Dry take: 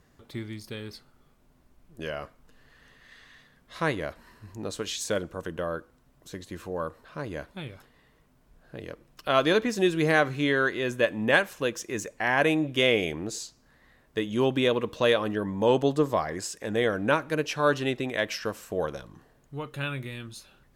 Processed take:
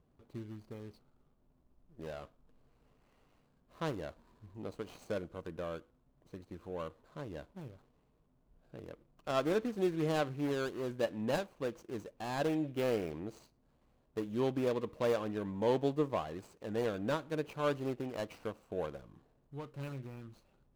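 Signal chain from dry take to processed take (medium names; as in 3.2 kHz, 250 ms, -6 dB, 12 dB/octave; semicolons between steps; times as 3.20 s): median filter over 25 samples; trim -8 dB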